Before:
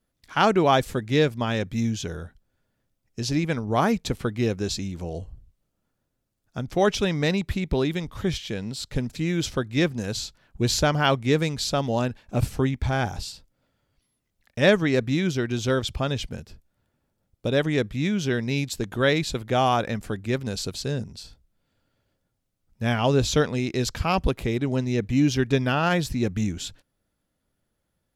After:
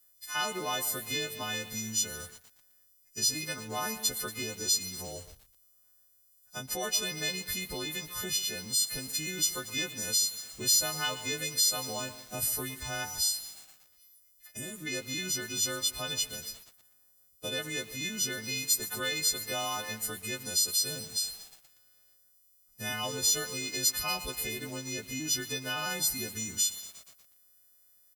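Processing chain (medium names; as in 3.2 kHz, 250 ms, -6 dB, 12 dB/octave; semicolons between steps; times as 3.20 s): partials quantised in pitch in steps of 3 st; in parallel at -3 dB: saturation -10.5 dBFS, distortion -19 dB; on the sum: delay 136 ms -18.5 dB; compression 2.5:1, threshold -27 dBFS, peak gain reduction 13 dB; pre-emphasis filter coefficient 0.97; time-frequency box 14.57–14.87 s, 430–6700 Hz -15 dB; tilt shelf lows +6.5 dB, about 1.1 kHz; bit-crushed delay 118 ms, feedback 80%, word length 8-bit, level -13 dB; trim +7.5 dB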